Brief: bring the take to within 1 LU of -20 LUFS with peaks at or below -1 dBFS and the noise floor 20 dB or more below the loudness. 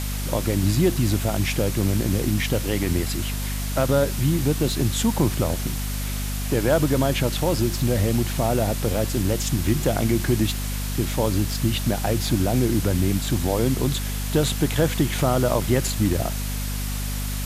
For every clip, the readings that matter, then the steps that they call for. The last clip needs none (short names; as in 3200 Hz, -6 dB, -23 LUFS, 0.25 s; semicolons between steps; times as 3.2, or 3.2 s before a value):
hum 50 Hz; harmonics up to 250 Hz; hum level -25 dBFS; noise floor -27 dBFS; noise floor target -43 dBFS; loudness -23.0 LUFS; peak -7.0 dBFS; loudness target -20.0 LUFS
-> de-hum 50 Hz, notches 5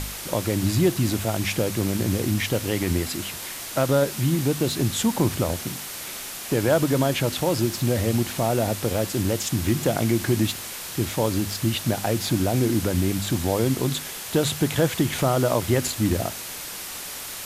hum none; noise floor -35 dBFS; noise floor target -44 dBFS
-> denoiser 9 dB, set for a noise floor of -35 dBFS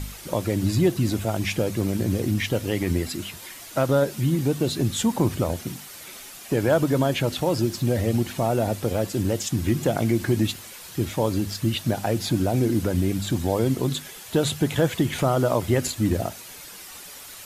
noise floor -42 dBFS; noise floor target -44 dBFS
-> denoiser 6 dB, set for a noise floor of -42 dBFS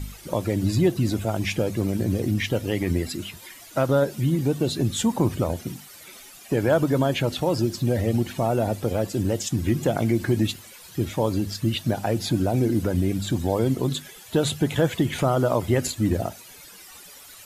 noise floor -46 dBFS; loudness -24.5 LUFS; peak -8.5 dBFS; loudness target -20.0 LUFS
-> gain +4.5 dB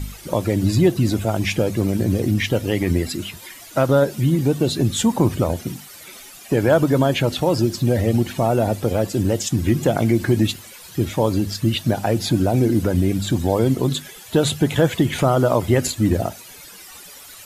loudness -20.0 LUFS; peak -4.0 dBFS; noise floor -41 dBFS